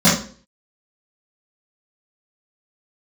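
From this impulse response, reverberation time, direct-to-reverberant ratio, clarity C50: 0.45 s, -12.0 dB, 4.5 dB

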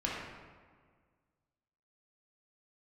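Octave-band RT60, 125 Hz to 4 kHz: 2.0, 1.9, 1.8, 1.6, 1.4, 1.0 s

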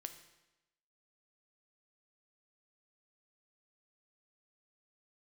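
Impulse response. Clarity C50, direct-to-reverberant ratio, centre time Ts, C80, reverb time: 10.5 dB, 7.5 dB, 13 ms, 12.5 dB, 0.95 s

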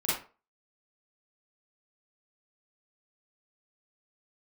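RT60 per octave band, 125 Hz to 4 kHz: 0.35, 0.30, 0.40, 0.35, 0.30, 0.25 s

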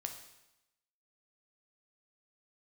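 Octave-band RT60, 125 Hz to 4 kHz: 0.95, 0.90, 0.90, 0.95, 0.90, 0.90 s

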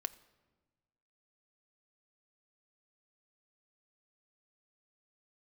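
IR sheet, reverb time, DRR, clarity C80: 1.3 s, 10.5 dB, 19.5 dB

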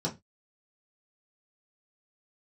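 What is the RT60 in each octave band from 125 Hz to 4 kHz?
0.30, 0.25, 0.20, 0.20, 0.20, 0.20 s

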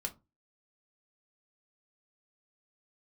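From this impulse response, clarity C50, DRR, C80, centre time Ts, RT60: 18.0 dB, 2.5 dB, 27.0 dB, 7 ms, 0.25 s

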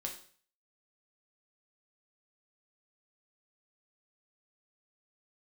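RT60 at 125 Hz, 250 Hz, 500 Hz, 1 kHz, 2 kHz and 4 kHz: 0.55, 0.45, 0.50, 0.45, 0.50, 0.45 s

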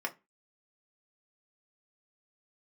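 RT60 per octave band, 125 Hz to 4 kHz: 0.25, 0.30, 0.25, 0.25, 0.25, 0.15 s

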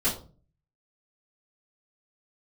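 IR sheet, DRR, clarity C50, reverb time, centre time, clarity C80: -11.0 dB, 8.5 dB, 0.40 s, 25 ms, 14.0 dB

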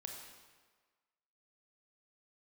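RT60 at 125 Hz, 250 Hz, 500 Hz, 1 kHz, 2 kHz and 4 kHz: 1.2, 1.3, 1.5, 1.5, 1.3, 1.2 s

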